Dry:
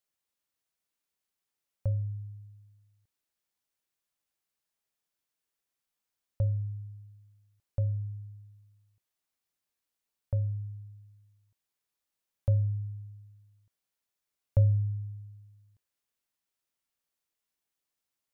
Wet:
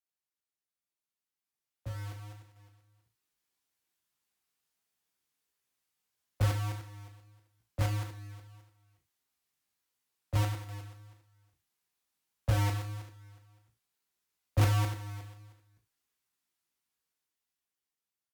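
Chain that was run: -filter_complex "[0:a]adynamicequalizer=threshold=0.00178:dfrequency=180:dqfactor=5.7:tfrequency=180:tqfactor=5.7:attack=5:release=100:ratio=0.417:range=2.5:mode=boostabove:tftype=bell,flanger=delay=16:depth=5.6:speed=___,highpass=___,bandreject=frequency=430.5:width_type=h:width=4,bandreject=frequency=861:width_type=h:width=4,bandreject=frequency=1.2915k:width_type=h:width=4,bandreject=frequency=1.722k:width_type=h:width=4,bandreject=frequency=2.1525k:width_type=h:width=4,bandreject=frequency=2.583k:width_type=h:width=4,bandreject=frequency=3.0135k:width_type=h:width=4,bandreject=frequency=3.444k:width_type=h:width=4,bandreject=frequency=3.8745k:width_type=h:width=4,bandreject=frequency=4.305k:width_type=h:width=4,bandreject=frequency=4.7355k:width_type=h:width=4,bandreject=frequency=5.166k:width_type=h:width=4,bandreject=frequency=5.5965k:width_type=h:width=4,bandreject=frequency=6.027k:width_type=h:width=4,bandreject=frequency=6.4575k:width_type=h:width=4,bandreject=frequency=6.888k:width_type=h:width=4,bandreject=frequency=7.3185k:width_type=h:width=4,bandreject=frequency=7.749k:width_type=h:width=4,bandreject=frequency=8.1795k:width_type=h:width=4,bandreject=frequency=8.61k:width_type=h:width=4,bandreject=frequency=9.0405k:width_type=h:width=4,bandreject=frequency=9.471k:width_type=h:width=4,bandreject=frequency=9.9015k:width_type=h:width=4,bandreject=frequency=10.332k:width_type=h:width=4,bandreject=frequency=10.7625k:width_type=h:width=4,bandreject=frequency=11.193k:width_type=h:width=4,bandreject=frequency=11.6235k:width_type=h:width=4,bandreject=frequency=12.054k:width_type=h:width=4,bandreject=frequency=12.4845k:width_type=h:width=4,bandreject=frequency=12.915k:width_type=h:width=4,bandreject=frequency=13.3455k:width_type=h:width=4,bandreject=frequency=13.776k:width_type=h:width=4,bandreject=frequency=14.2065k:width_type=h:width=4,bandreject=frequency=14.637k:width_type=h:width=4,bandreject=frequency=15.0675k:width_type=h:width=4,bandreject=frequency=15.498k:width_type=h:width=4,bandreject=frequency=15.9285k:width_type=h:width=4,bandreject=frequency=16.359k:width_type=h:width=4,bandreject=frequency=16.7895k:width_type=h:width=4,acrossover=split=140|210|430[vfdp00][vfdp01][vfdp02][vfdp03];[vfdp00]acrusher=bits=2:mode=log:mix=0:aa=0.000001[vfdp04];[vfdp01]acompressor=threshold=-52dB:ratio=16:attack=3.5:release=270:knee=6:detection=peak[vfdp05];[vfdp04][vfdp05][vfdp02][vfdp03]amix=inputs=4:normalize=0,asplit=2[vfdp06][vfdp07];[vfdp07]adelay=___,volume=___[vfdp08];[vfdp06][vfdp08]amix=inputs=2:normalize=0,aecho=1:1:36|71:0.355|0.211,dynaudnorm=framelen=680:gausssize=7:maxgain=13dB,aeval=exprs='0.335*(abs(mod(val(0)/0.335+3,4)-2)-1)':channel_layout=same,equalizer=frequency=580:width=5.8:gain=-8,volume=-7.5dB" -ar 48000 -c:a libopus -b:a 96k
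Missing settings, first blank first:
1.6, 44, 15, -10dB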